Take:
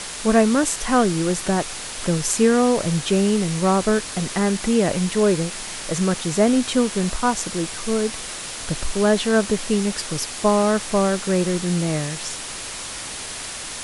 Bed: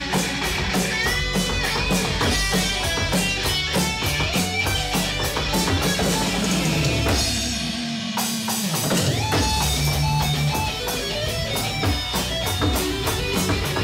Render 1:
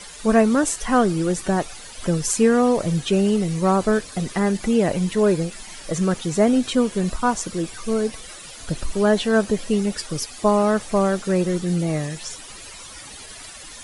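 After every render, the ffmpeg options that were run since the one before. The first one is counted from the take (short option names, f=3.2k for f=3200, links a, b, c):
-af "afftdn=nr=13:nf=-32"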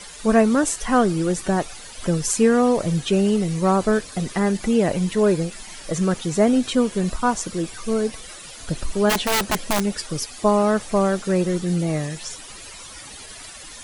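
-filter_complex "[0:a]asplit=3[a][b][c];[a]afade=t=out:st=9.09:d=0.02[d];[b]aeval=exprs='(mod(5.31*val(0)+1,2)-1)/5.31':c=same,afade=t=in:st=9.09:d=0.02,afade=t=out:st=9.81:d=0.02[e];[c]afade=t=in:st=9.81:d=0.02[f];[d][e][f]amix=inputs=3:normalize=0"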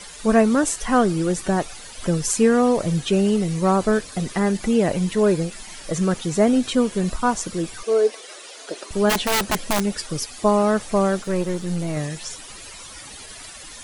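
-filter_complex "[0:a]asettb=1/sr,asplit=3[a][b][c];[a]atrim=end=7.834[d];[b]atrim=start=7.83:end=8.91,asetpts=PTS-STARTPTS,afade=t=in:d=0.004:c=qsin,afade=t=out:st=1.076:d=0.004:c=qsin,highpass=f=330:w=0.5412,highpass=f=330:w=1.3066,equalizer=f=410:t=q:w=4:g=8,equalizer=f=630:t=q:w=4:g=4,equalizer=f=7.6k:t=q:w=4:g=-3,lowpass=f=9.5k:w=0.5412,lowpass=f=9.5k:w=1.3066[e];[c]atrim=start=8.906[f];[d][e]acrossfade=d=0.004:c1=hsin:c2=qsin[g];[g][f]acrossfade=d=0.004:c1=qsin:c2=hsin,asettb=1/sr,asplit=3[h][i][j];[h]atrim=end=11.234[k];[i]atrim=start=11.23:end=11.97,asetpts=PTS-STARTPTS,afade=t=in:d=0.004:c=qsin,afade=t=out:st=0.736:d=0.004:c=qsin,aeval=exprs='if(lt(val(0),0),0.447*val(0),val(0))':c=same[l];[j]atrim=start=11.966[m];[k][l]acrossfade=d=0.004:c1=hsin:c2=qsin[n];[n][m]acrossfade=d=0.004:c1=qsin:c2=hsin"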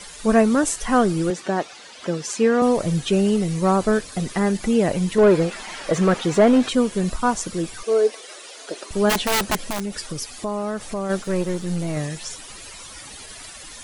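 -filter_complex "[0:a]asettb=1/sr,asplit=3[a][b][c];[a]atrim=end=1.304[d];[b]atrim=start=1.3:end=2.62,asetpts=PTS-STARTPTS,afade=t=in:d=0.004:c=qsin,afade=t=out:st=1.316:d=0.004:c=qsin,highpass=240,lowpass=5.5k[e];[c]atrim=start=2.616[f];[d][e]acrossfade=d=0.004:c1=hsin:c2=qsin[g];[g][f]acrossfade=d=0.004:c1=qsin:c2=hsin,asettb=1/sr,asplit=3[h][i][j];[h]atrim=end=5.184[k];[i]atrim=start=5.18:end=6.69,asetpts=PTS-STARTPTS,afade=t=in:d=0.004:c=qsin,afade=t=out:st=1.506:d=0.004:c=qsin,asplit=2[l][m];[m]highpass=f=720:p=1,volume=19dB,asoftclip=type=tanh:threshold=-5dB[n];[l][n]amix=inputs=2:normalize=0,lowpass=f=1.3k:p=1,volume=-6dB[o];[j]atrim=start=6.686[p];[k][o]acrossfade=d=0.004:c1=hsin:c2=qsin[q];[q][p]acrossfade=d=0.004:c1=qsin:c2=hsin,asplit=3[r][s][t];[r]afade=t=out:st=9.55:d=0.02[u];[s]acompressor=threshold=-25dB:ratio=3:attack=3.2:release=140:knee=1:detection=peak,afade=t=in:st=9.55:d=0.02,afade=t=out:st=11.09:d=0.02[v];[t]afade=t=in:st=11.09:d=0.02[w];[u][v][w]amix=inputs=3:normalize=0"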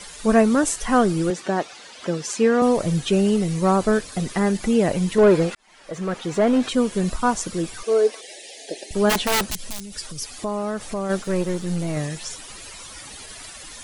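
-filter_complex "[0:a]asettb=1/sr,asplit=3[a][b][c];[a]atrim=end=8.214[d];[b]atrim=start=8.21:end=8.95,asetpts=PTS-STARTPTS,afade=t=in:d=0.004:c=qsin,afade=t=out:st=0.736:d=0.004:c=qsin,asuperstop=centerf=1200:order=12:qfactor=1.5[e];[c]atrim=start=8.946[f];[d][e]acrossfade=d=0.004:c1=hsin:c2=qsin[g];[g][f]acrossfade=d=0.004:c1=qsin:c2=hsin,asettb=1/sr,asplit=3[h][i][j];[h]atrim=end=9.464[k];[i]atrim=start=9.46:end=10.39,asetpts=PTS-STARTPTS,afade=t=in:d=0.004:c=qsin,afade=t=out:st=0.926:d=0.004:c=qsin,acrossover=split=140|3000[l][m][n];[m]acompressor=threshold=-42dB:ratio=4:attack=3.2:release=140:knee=2.83:detection=peak[o];[l][o][n]amix=inputs=3:normalize=0[p];[j]atrim=start=10.386[q];[k][p]acrossfade=d=0.004:c1=hsin:c2=qsin[r];[r][q]acrossfade=d=0.004:c1=qsin:c2=hsin,asplit=2[s][t];[s]atrim=end=5.55,asetpts=PTS-STARTPTS,afade=t=out:st=5.546:d=0.004:c=hsin[u];[t]atrim=start=5.55,asetpts=PTS-STARTPTS,afade=t=in:d=1.4[v];[u][v]concat=n=2:v=0:a=1"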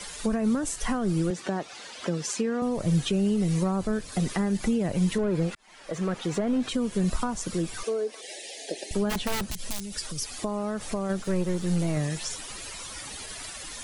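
-filter_complex "[0:a]alimiter=limit=-12.5dB:level=0:latency=1,acrossover=split=200[a][b];[b]acompressor=threshold=-28dB:ratio=6[c];[a][c]amix=inputs=2:normalize=0"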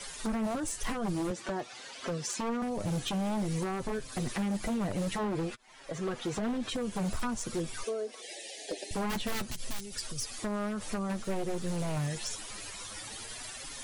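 -af "flanger=delay=7.2:depth=3:regen=24:speed=0.51:shape=triangular,aeval=exprs='0.0473*(abs(mod(val(0)/0.0473+3,4)-2)-1)':c=same"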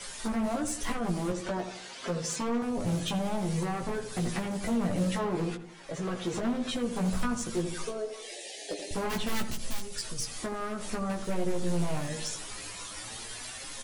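-filter_complex "[0:a]asplit=2[a][b];[b]adelay=17,volume=-4dB[c];[a][c]amix=inputs=2:normalize=0,asplit=2[d][e];[e]adelay=81,lowpass=f=1.2k:p=1,volume=-7.5dB,asplit=2[f][g];[g]adelay=81,lowpass=f=1.2k:p=1,volume=0.5,asplit=2[h][i];[i]adelay=81,lowpass=f=1.2k:p=1,volume=0.5,asplit=2[j][k];[k]adelay=81,lowpass=f=1.2k:p=1,volume=0.5,asplit=2[l][m];[m]adelay=81,lowpass=f=1.2k:p=1,volume=0.5,asplit=2[n][o];[o]adelay=81,lowpass=f=1.2k:p=1,volume=0.5[p];[f][h][j][l][n][p]amix=inputs=6:normalize=0[q];[d][q]amix=inputs=2:normalize=0"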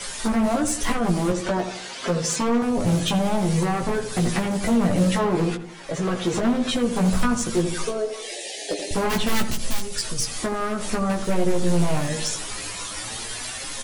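-af "volume=9dB"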